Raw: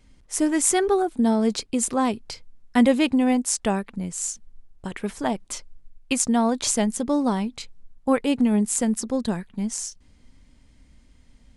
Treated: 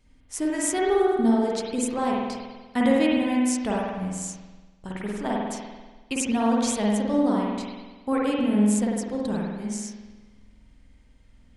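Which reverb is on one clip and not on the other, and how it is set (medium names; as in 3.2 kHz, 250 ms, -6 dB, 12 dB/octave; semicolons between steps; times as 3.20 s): spring tank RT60 1.3 s, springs 48 ms, chirp 60 ms, DRR -4 dB; trim -6.5 dB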